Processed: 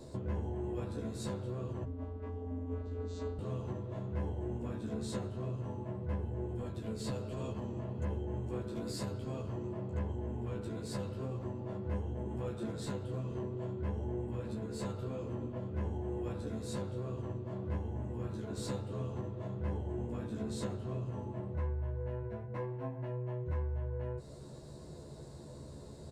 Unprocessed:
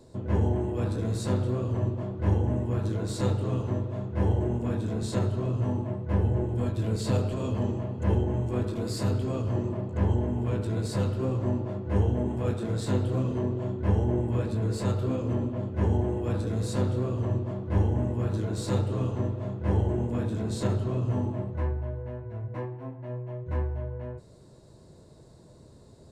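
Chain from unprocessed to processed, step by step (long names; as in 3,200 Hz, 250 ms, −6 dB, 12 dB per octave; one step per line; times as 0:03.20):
downward compressor 6 to 1, threshold −39 dBFS, peak gain reduction 19 dB
0:01.84–0:03.39: channel vocoder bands 16, square 86.9 Hz
double-tracking delay 14 ms −4 dB
level +2 dB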